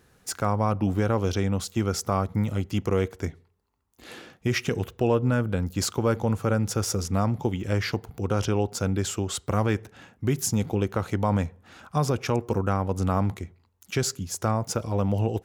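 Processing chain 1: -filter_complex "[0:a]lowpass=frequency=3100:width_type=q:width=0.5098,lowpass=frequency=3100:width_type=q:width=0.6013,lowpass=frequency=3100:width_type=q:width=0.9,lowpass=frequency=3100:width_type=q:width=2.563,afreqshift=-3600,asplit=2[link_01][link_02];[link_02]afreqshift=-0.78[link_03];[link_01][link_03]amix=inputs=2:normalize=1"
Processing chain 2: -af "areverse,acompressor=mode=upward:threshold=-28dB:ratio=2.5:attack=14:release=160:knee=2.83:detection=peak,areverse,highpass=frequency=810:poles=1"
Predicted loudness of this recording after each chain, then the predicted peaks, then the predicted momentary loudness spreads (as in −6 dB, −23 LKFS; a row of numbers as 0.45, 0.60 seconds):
−25.5, −33.0 LKFS; −11.0, −13.5 dBFS; 13, 8 LU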